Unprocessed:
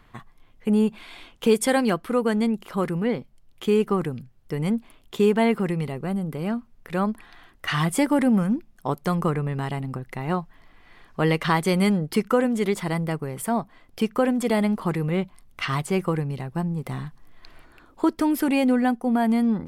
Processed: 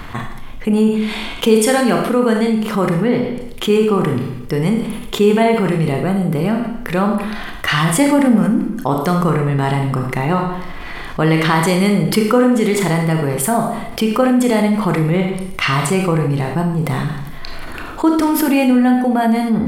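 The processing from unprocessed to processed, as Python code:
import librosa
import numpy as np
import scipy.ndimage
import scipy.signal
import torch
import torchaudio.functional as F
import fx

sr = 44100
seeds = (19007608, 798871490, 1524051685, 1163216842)

p1 = fx.level_steps(x, sr, step_db=18)
p2 = x + F.gain(torch.from_numpy(p1), -1.5).numpy()
p3 = fx.rev_schroeder(p2, sr, rt60_s=0.6, comb_ms=25, drr_db=3.0)
p4 = fx.env_flatten(p3, sr, amount_pct=50)
y = F.gain(torch.from_numpy(p4), -1.0).numpy()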